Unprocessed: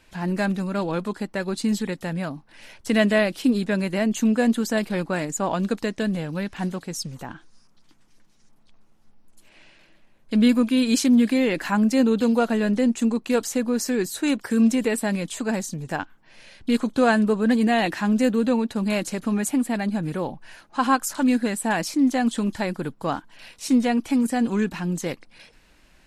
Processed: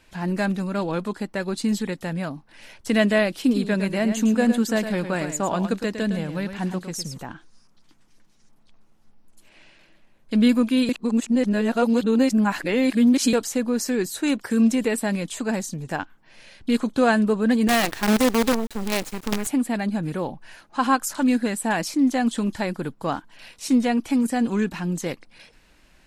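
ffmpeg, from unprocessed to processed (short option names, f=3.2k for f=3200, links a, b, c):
-filter_complex "[0:a]asettb=1/sr,asplit=3[a][b][c];[a]atrim=end=3.404[d];[b]atrim=start=3.4:end=7.18,asetpts=PTS-STARTPTS,afade=t=in:d=0.004:c=qsin,afade=t=out:st=3.776:d=0.004:c=qsin,aecho=1:1:109:0.355,atrim=end_sample=166698[e];[c]atrim=start=7.176[f];[d][e]acrossfade=d=0.004:c1=hsin:c2=qsin[g];[g][f]acrossfade=d=0.004:c1=qsin:c2=hsin,asettb=1/sr,asplit=3[h][i][j];[h]atrim=end=17.684[k];[i]atrim=start=17.68:end=19.47,asetpts=PTS-STARTPTS,afade=t=in:d=0.004:c=qsin,afade=t=out:st=1.786:d=0.004:c=qsin,acrusher=bits=4:dc=4:mix=0:aa=0.000001[l];[j]atrim=start=19.466[m];[k][l]acrossfade=d=0.004:c1=hsin:c2=qsin[n];[n][m]acrossfade=d=0.004:c1=qsin:c2=hsin,asplit=3[o][p][q];[o]atrim=end=10.892[r];[p]atrim=start=10.888:end=13.332,asetpts=PTS-STARTPTS,areverse[s];[q]atrim=start=13.328[t];[r][s]acrossfade=d=0.004:c1=hsin:c2=hsin[u];[u][t]acrossfade=d=0.004:c1=hsin:c2=hsin"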